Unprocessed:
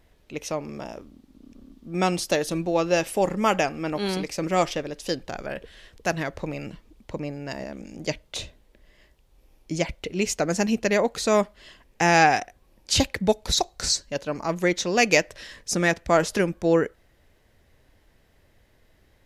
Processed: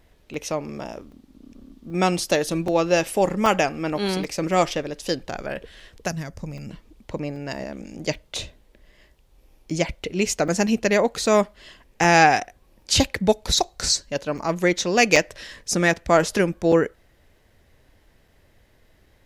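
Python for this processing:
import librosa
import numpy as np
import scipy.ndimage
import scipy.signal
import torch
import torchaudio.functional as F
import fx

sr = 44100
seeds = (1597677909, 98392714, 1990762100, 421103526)

y = fx.spec_box(x, sr, start_s=6.08, length_s=0.61, low_hz=270.0, high_hz=4600.0, gain_db=-11)
y = fx.buffer_crackle(y, sr, first_s=0.34, period_s=0.78, block=128, kind='zero')
y = F.gain(torch.from_numpy(y), 2.5).numpy()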